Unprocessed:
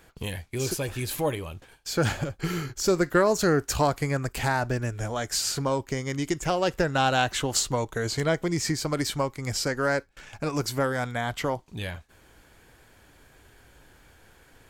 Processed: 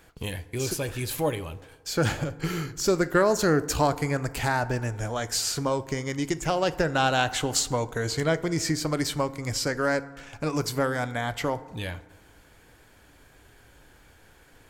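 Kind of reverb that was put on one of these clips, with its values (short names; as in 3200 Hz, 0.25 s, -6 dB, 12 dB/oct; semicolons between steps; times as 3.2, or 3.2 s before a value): FDN reverb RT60 1.4 s, low-frequency decay 0.85×, high-frequency decay 0.4×, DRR 14 dB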